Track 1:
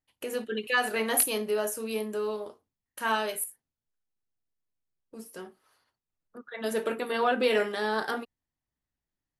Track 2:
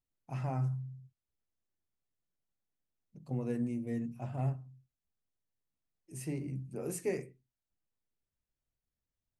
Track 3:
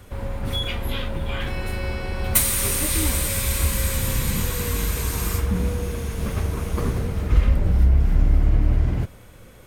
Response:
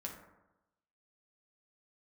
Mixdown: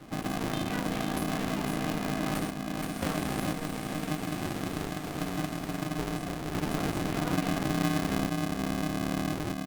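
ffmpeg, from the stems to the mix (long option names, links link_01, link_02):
-filter_complex "[0:a]acrusher=bits=7:mix=0:aa=0.000001,volume=-10dB,asplit=2[link_01][link_02];[1:a]volume=-9dB[link_03];[2:a]lowpass=frequency=1900:poles=1,volume=-3dB,asplit=2[link_04][link_05];[link_05]volume=-7.5dB[link_06];[link_02]apad=whole_len=426111[link_07];[link_04][link_07]sidechaingate=range=-33dB:threshold=-49dB:ratio=16:detection=peak[link_08];[link_06]aecho=0:1:472|944|1416|1888|2360:1|0.36|0.13|0.0467|0.0168[link_09];[link_01][link_03][link_08][link_09]amix=inputs=4:normalize=0,acrossover=split=80|1400[link_10][link_11][link_12];[link_10]acompressor=threshold=-33dB:ratio=4[link_13];[link_11]acompressor=threshold=-32dB:ratio=4[link_14];[link_12]acompressor=threshold=-45dB:ratio=4[link_15];[link_13][link_14][link_15]amix=inputs=3:normalize=0,aeval=exprs='val(0)*sgn(sin(2*PI*230*n/s))':channel_layout=same"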